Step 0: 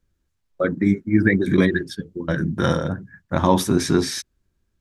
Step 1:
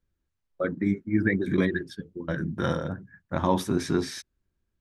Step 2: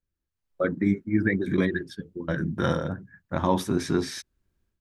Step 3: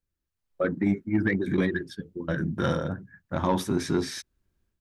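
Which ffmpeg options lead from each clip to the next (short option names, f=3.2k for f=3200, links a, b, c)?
-af "bass=f=250:g=-1,treble=f=4k:g=-5,volume=-6.5dB"
-af "dynaudnorm=f=310:g=3:m=13.5dB,volume=-8dB"
-af "asoftclip=type=tanh:threshold=-13dB"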